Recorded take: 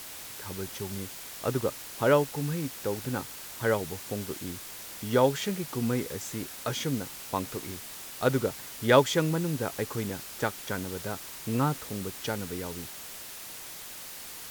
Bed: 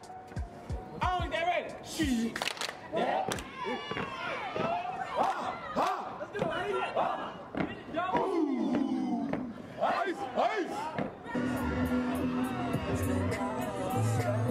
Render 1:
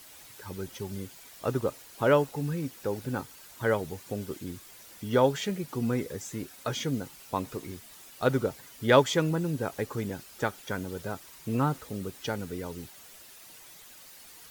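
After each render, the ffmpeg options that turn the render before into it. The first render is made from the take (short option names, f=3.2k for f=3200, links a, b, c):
-af "afftdn=nr=10:nf=-43"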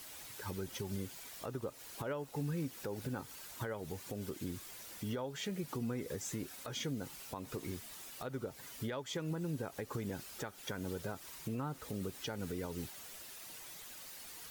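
-af "acompressor=threshold=-33dB:ratio=5,alimiter=level_in=6dB:limit=-24dB:level=0:latency=1:release=151,volume=-6dB"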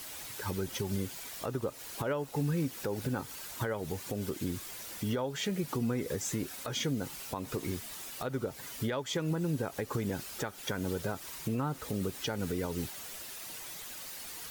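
-af "volume=6.5dB"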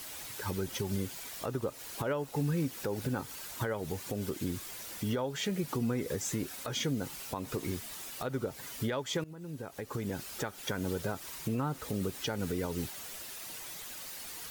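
-filter_complex "[0:a]asplit=2[a][b];[a]atrim=end=9.24,asetpts=PTS-STARTPTS,afade=t=out:st=9.236:d=0.004:c=hsin:silence=0.1[c];[b]atrim=start=9.24,asetpts=PTS-STARTPTS,afade=t=in:d=1.1:silence=0.1[d];[c][d]concat=n=2:v=0:a=1"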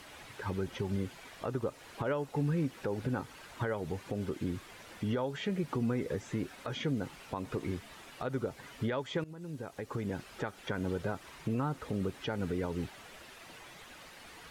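-filter_complex "[0:a]acrossover=split=3200[a][b];[b]acompressor=threshold=-57dB:ratio=4:attack=1:release=60[c];[a][c]amix=inputs=2:normalize=0,lowpass=11k"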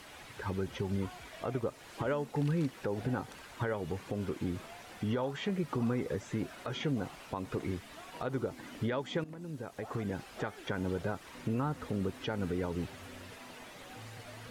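-filter_complex "[1:a]volume=-20.5dB[a];[0:a][a]amix=inputs=2:normalize=0"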